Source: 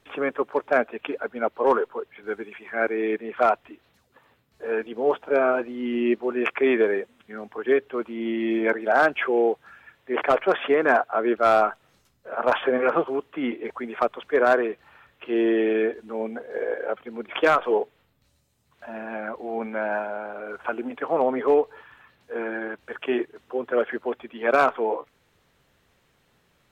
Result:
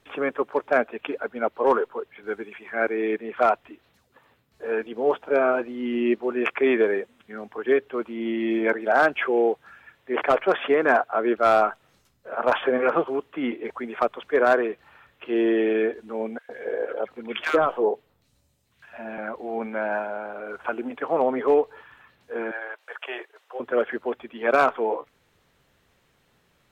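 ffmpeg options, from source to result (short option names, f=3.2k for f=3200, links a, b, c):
-filter_complex "[0:a]asettb=1/sr,asplit=3[a][b][c];[a]atrim=end=16.384[d];[b]atrim=start=16.38:end=19.18,asetpts=PTS-STARTPTS,afade=t=in:d=0.004:c=qsin,afade=t=out:st=2.796:d=0.004:c=qsin,acrossover=split=1400[e][f];[e]adelay=110[g];[g][f]amix=inputs=2:normalize=0,atrim=end_sample=123480[h];[c]atrim=start=19.176[i];[d][h]acrossfade=d=0.004:c1=hsin:c2=qsin[j];[j][i]acrossfade=d=0.004:c1=qsin:c2=hsin,asettb=1/sr,asplit=3[k][l][m];[k]atrim=end=22.514[n];[l]atrim=start=22.51:end=23.6,asetpts=PTS-STARTPTS,afade=t=in:d=0.004:c=qsin,afade=t=out:st=1.086:d=0.004:c=qsin,highpass=f=560:w=0.5412,highpass=f=560:w=1.3066[o];[m]atrim=start=23.596[p];[n][o]acrossfade=d=0.004:c1=hsin:c2=qsin[q];[q][p]acrossfade=d=0.004:c1=qsin:c2=hsin"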